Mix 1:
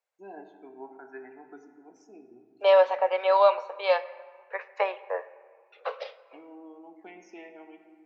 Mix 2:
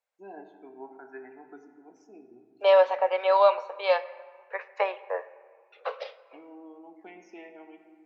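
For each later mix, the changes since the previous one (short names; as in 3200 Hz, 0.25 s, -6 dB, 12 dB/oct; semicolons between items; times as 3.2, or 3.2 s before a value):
first voice: add air absorption 54 m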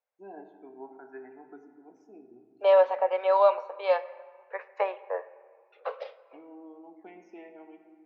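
master: add high shelf 2100 Hz -10.5 dB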